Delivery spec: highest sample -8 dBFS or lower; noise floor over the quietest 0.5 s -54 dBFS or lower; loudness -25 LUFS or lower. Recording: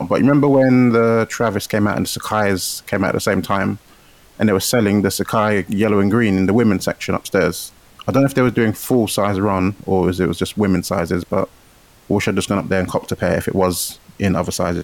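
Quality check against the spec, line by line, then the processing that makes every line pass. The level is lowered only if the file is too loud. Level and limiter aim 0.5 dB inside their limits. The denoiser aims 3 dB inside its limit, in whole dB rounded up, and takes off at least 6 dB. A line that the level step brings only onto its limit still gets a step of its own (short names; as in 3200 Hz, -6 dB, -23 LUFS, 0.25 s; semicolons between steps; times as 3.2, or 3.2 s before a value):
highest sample -4.5 dBFS: fail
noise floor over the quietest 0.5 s -49 dBFS: fail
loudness -17.5 LUFS: fail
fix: gain -8 dB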